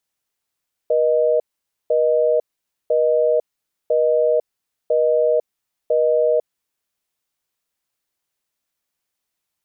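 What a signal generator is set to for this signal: call progress tone busy tone, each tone -16.5 dBFS 5.86 s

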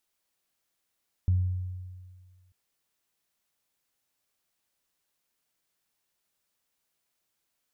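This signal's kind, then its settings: additive tone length 1.24 s, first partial 91.5 Hz, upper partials -19.5 dB, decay 1.76 s, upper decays 0.79 s, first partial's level -19 dB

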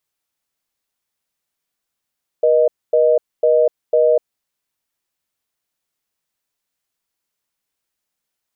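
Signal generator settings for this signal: call progress tone reorder tone, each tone -13 dBFS 2.00 s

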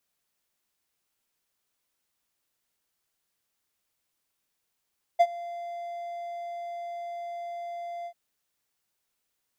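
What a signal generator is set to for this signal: ADSR triangle 691 Hz, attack 18 ms, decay 52 ms, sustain -20.5 dB, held 2.87 s, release 71 ms -11.5 dBFS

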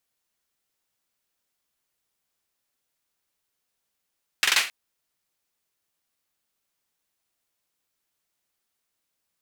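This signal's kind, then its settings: hand clap length 0.27 s, bursts 4, apart 44 ms, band 2.3 kHz, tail 0.32 s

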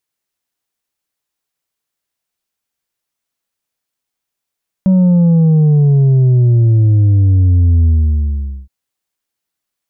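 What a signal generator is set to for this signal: sub drop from 190 Hz, over 3.82 s, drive 4 dB, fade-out 0.82 s, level -7 dB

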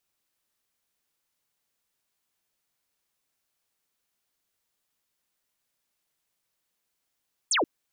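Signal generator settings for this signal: laser zap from 9.6 kHz, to 260 Hz, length 0.13 s sine, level -21 dB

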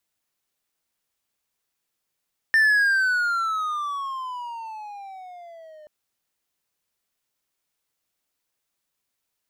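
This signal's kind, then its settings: gliding synth tone triangle, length 3.33 s, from 1.8 kHz, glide -19 st, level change -29 dB, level -12 dB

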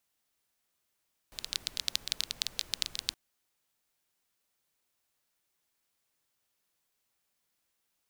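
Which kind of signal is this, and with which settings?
rain from filtered ticks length 1.82 s, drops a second 13, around 4 kHz, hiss -16.5 dB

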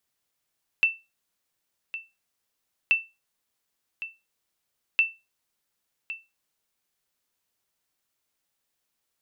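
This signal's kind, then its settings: sonar ping 2.67 kHz, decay 0.24 s, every 2.08 s, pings 3, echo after 1.11 s, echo -14 dB -12.5 dBFS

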